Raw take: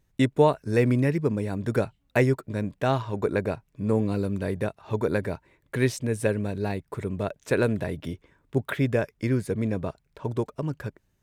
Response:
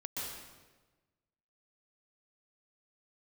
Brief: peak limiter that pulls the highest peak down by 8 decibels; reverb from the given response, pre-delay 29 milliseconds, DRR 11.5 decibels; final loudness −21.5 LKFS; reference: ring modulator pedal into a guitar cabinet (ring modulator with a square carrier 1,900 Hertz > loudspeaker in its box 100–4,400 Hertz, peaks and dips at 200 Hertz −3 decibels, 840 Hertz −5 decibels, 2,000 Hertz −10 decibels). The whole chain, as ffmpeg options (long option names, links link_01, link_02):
-filter_complex "[0:a]alimiter=limit=-16dB:level=0:latency=1,asplit=2[link_01][link_02];[1:a]atrim=start_sample=2205,adelay=29[link_03];[link_02][link_03]afir=irnorm=-1:irlink=0,volume=-13dB[link_04];[link_01][link_04]amix=inputs=2:normalize=0,aeval=exprs='val(0)*sgn(sin(2*PI*1900*n/s))':channel_layout=same,highpass=100,equalizer=frequency=200:width_type=q:width=4:gain=-3,equalizer=frequency=840:width_type=q:width=4:gain=-5,equalizer=frequency=2000:width_type=q:width=4:gain=-10,lowpass=frequency=4400:width=0.5412,lowpass=frequency=4400:width=1.3066,volume=9dB"